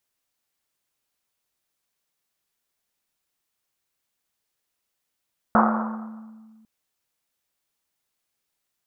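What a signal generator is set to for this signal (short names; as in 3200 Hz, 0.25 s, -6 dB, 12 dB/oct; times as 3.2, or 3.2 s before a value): Risset drum, pitch 220 Hz, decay 1.97 s, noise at 1000 Hz, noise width 760 Hz, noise 50%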